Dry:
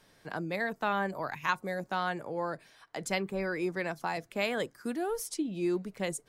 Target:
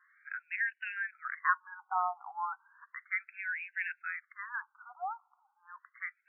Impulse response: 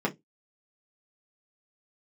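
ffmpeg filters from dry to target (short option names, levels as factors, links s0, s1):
-af "afftfilt=real='re*between(b*sr/1024,980*pow(2100/980,0.5+0.5*sin(2*PI*0.34*pts/sr))/1.41,980*pow(2100/980,0.5+0.5*sin(2*PI*0.34*pts/sr))*1.41)':imag='im*between(b*sr/1024,980*pow(2100/980,0.5+0.5*sin(2*PI*0.34*pts/sr))/1.41,980*pow(2100/980,0.5+0.5*sin(2*PI*0.34*pts/sr))*1.41)':win_size=1024:overlap=0.75,volume=1.41"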